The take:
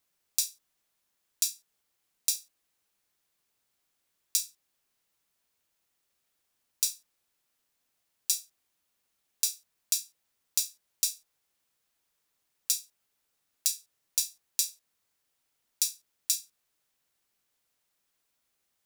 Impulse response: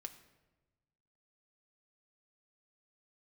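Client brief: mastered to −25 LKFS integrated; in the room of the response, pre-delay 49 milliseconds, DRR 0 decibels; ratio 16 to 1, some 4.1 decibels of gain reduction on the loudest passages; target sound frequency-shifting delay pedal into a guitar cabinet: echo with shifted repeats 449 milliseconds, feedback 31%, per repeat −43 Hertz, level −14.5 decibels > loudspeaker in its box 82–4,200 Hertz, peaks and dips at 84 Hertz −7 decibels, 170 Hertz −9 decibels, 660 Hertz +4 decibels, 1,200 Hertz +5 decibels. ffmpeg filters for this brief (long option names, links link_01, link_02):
-filter_complex "[0:a]acompressor=threshold=-26dB:ratio=16,asplit=2[link_01][link_02];[1:a]atrim=start_sample=2205,adelay=49[link_03];[link_02][link_03]afir=irnorm=-1:irlink=0,volume=4.5dB[link_04];[link_01][link_04]amix=inputs=2:normalize=0,asplit=4[link_05][link_06][link_07][link_08];[link_06]adelay=449,afreqshift=-43,volume=-14.5dB[link_09];[link_07]adelay=898,afreqshift=-86,volume=-24.7dB[link_10];[link_08]adelay=1347,afreqshift=-129,volume=-34.8dB[link_11];[link_05][link_09][link_10][link_11]amix=inputs=4:normalize=0,highpass=82,equalizer=frequency=84:width_type=q:width=4:gain=-7,equalizer=frequency=170:width_type=q:width=4:gain=-9,equalizer=frequency=660:width_type=q:width=4:gain=4,equalizer=frequency=1200:width_type=q:width=4:gain=5,lowpass=frequency=4200:width=0.5412,lowpass=frequency=4200:width=1.3066,volume=22dB"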